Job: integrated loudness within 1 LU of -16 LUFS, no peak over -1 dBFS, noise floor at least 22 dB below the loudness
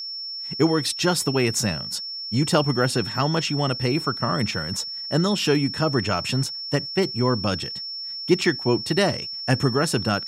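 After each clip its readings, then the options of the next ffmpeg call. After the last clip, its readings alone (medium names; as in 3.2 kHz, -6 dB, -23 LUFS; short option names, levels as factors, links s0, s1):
steady tone 5.4 kHz; tone level -30 dBFS; loudness -23.0 LUFS; peak level -5.0 dBFS; loudness target -16.0 LUFS
-> -af "bandreject=f=5400:w=30"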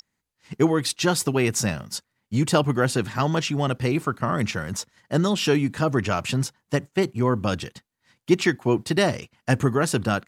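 steady tone not found; loudness -23.5 LUFS; peak level -5.5 dBFS; loudness target -16.0 LUFS
-> -af "volume=2.37,alimiter=limit=0.891:level=0:latency=1"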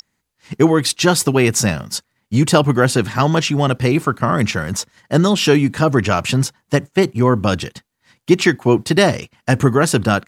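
loudness -16.5 LUFS; peak level -1.0 dBFS; noise floor -72 dBFS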